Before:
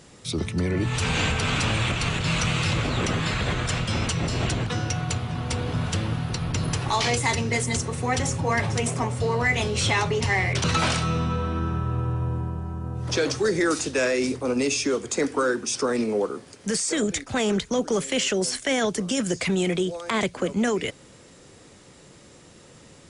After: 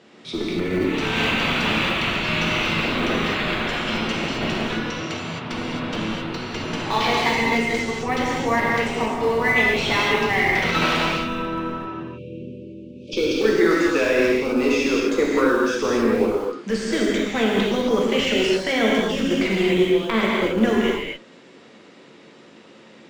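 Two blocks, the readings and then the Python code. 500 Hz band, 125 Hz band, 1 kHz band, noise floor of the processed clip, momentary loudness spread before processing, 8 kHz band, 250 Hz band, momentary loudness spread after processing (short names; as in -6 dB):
+5.5 dB, -6.0 dB, +4.5 dB, -47 dBFS, 5 LU, -8.0 dB, +5.0 dB, 10 LU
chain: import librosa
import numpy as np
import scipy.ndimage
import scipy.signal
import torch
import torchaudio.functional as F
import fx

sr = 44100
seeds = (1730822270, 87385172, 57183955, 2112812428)

p1 = fx.spec_erase(x, sr, start_s=11.91, length_s=1.49, low_hz=620.0, high_hz=2200.0)
p2 = scipy.signal.sosfilt(scipy.signal.cheby1(2, 1.0, [250.0, 3200.0], 'bandpass', fs=sr, output='sos'), p1)
p3 = fx.schmitt(p2, sr, flips_db=-21.5)
p4 = p2 + (p3 * librosa.db_to_amplitude(-10.5))
y = fx.rev_gated(p4, sr, seeds[0], gate_ms=290, shape='flat', drr_db=-4.0)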